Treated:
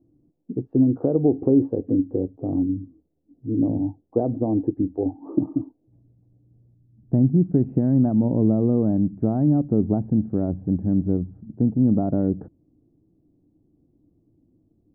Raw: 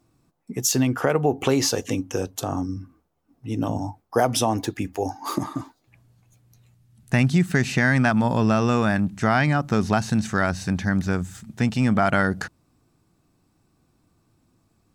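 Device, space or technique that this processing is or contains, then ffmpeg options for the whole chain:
under water: -filter_complex "[0:a]lowpass=frequency=550:width=0.5412,lowpass=frequency=550:width=1.3066,equalizer=frequency=300:width_type=o:width=0.4:gain=9,asettb=1/sr,asplit=3[link_01][link_02][link_03];[link_01]atrim=end=2.204[link_04];[link_02]atrim=start=2.2:end=3.83,asetpts=PTS-STARTPTS,afade=type=in:duration=0.004:curve=qsin,afade=type=out:start_time=1.626:duration=0.004:curve=qsin,lowpass=1200[link_05];[link_03]atrim=start=3.826[link_06];[link_04][link_05]acrossfade=duration=0.004:curve1=hsin:curve2=qsin[link_07];[link_07][link_06]acrossfade=duration=0.004:curve1=qsin:curve2=hsin"

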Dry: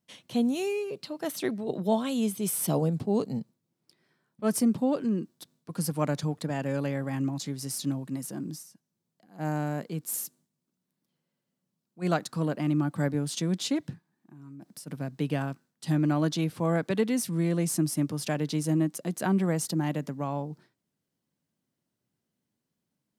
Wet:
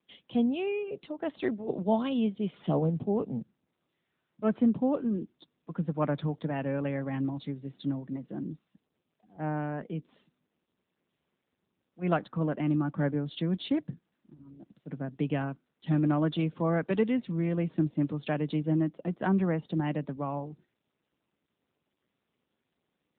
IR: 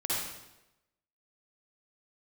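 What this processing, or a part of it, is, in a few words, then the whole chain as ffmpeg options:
mobile call with aggressive noise cancelling: -af "highpass=110,afftdn=noise_reduction=12:noise_floor=-51" -ar 8000 -c:a libopencore_amrnb -b:a 10200

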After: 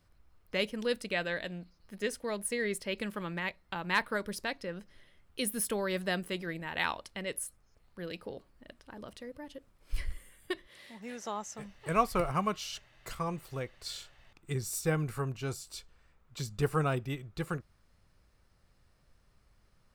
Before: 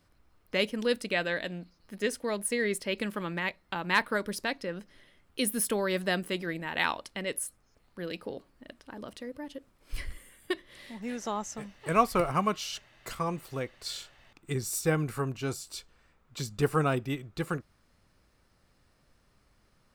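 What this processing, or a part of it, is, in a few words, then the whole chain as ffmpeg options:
low shelf boost with a cut just above: -filter_complex "[0:a]lowshelf=frequency=110:gain=7,equalizer=frequency=270:width_type=o:width=0.6:gain=-4,asettb=1/sr,asplit=3[link_01][link_02][link_03];[link_01]atrim=end=10.674[link_04];[link_02]atrim=start=10.67:end=11.59,asetpts=PTS-STARTPTS,afade=type=in:duration=0.004:curve=qsin,afade=type=out:start_time=0.916:duration=0.004:curve=qsin,highpass=frequency=240:poles=1[link_05];[link_03]atrim=start=11.586[link_06];[link_04][link_05]acrossfade=duration=0.004:curve1=hsin:curve2=qsin[link_07];[link_07][link_06]acrossfade=duration=0.004:curve1=qsin:curve2=hsin,volume=-3.5dB"

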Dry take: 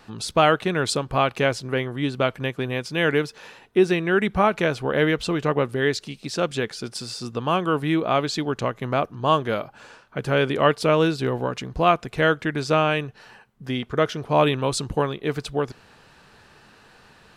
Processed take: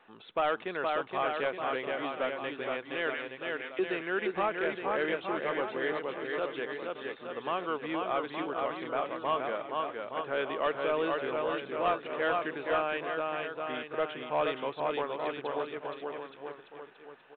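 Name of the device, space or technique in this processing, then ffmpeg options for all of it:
telephone: -filter_complex "[0:a]asettb=1/sr,asplit=3[link_01][link_02][link_03];[link_01]atrim=end=3.144[link_04];[link_02]atrim=start=3.14:end=3.79,asetpts=PTS-STARTPTS,afade=type=in:duration=0.004:curve=qsin,afade=type=out:start_time=0.646:duration=0.004:curve=qsin,highpass=frequency=1000:width=0.5412,highpass=frequency=1000:width=1.3066[link_05];[link_03]atrim=start=3.786[link_06];[link_04][link_05]acrossfade=duration=0.004:curve1=hsin:curve2=qsin[link_07];[link_07][link_06]acrossfade=duration=0.004:curve1=qsin:curve2=hsin,highpass=390,lowpass=3200,aecho=1:1:470|869.5|1209|1498|1743:0.631|0.398|0.251|0.158|0.1,asoftclip=type=tanh:threshold=-11.5dB,volume=-8.5dB" -ar 8000 -c:a pcm_mulaw

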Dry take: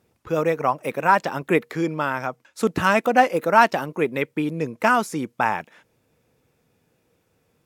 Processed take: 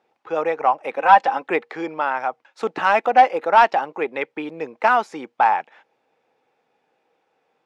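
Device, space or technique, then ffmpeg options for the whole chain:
intercom: -filter_complex "[0:a]highpass=430,lowpass=3500,equalizer=frequency=810:width_type=o:width=0.24:gain=11,asoftclip=type=tanh:threshold=-4.5dB,asettb=1/sr,asplit=3[link_01][link_02][link_03];[link_01]atrim=end=0.964[link_04];[link_02]atrim=start=0.96:end=1.48,asetpts=PTS-STARTPTS,afade=type=in:duration=0.004:curve=qsin,afade=type=out:start_time=0.516:duration=0.004:curve=qsin,aecho=1:1:3.9:0.58,atrim=end_sample=22932[link_05];[link_03]atrim=start=1.476[link_06];[link_04][link_05]acrossfade=duration=0.004:curve1=hsin:curve2=qsin[link_07];[link_07][link_06]acrossfade=duration=0.004:curve1=qsin:curve2=hsin,volume=1dB"

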